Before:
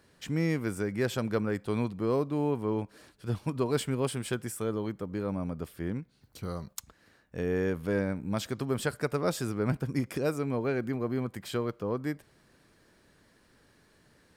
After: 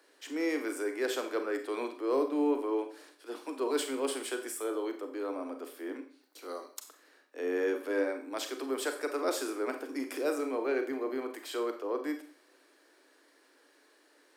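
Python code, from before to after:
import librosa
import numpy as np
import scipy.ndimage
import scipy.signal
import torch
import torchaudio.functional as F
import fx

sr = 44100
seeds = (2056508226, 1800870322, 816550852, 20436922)

y = scipy.signal.sosfilt(scipy.signal.butter(16, 270.0, 'highpass', fs=sr, output='sos'), x)
y = fx.transient(y, sr, attack_db=-4, sustain_db=0)
y = fx.rev_schroeder(y, sr, rt60_s=0.45, comb_ms=30, drr_db=6.0)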